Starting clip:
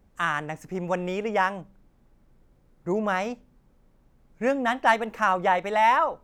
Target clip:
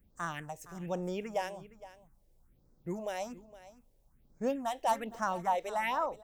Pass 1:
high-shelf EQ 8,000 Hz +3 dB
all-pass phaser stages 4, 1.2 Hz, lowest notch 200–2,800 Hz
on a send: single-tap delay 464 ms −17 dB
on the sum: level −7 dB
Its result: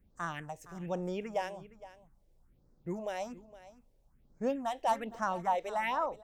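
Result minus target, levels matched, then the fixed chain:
8,000 Hz band −4.0 dB
high-shelf EQ 8,000 Hz +13 dB
all-pass phaser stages 4, 1.2 Hz, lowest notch 200–2,800 Hz
on a send: single-tap delay 464 ms −17 dB
on the sum: level −7 dB

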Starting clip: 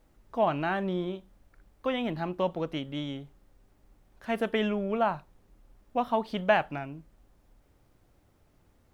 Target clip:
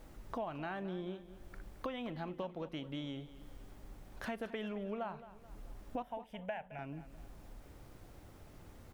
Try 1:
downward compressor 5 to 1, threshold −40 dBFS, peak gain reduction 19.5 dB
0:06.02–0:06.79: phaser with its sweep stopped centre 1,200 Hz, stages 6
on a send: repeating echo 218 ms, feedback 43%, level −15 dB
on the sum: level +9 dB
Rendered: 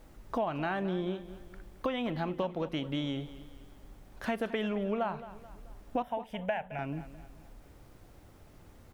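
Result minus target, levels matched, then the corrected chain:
downward compressor: peak gain reduction −8.5 dB
downward compressor 5 to 1, threshold −50.5 dBFS, peak gain reduction 28 dB
0:06.02–0:06.79: phaser with its sweep stopped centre 1,200 Hz, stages 6
on a send: repeating echo 218 ms, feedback 43%, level −15 dB
on the sum: level +9 dB

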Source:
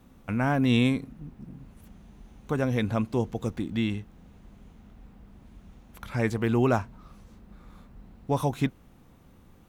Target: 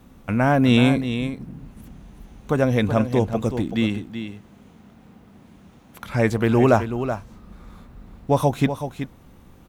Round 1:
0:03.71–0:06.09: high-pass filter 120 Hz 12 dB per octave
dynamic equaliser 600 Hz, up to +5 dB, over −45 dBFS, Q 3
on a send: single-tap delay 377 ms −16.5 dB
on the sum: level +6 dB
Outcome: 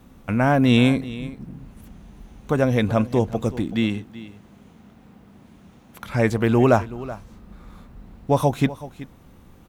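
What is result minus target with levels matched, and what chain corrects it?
echo-to-direct −7 dB
0:03.71–0:06.09: high-pass filter 120 Hz 12 dB per octave
dynamic equaliser 600 Hz, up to +5 dB, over −45 dBFS, Q 3
on a send: single-tap delay 377 ms −9.5 dB
on the sum: level +6 dB

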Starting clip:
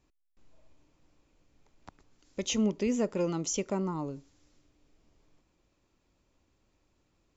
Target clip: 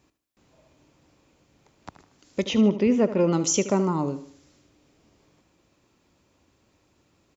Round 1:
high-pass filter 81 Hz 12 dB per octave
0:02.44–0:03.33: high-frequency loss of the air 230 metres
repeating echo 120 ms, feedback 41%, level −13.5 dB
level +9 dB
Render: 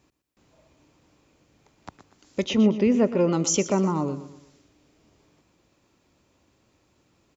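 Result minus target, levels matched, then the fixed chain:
echo 44 ms late
high-pass filter 81 Hz 12 dB per octave
0:02.44–0:03.33: high-frequency loss of the air 230 metres
repeating echo 76 ms, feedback 41%, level −13.5 dB
level +9 dB

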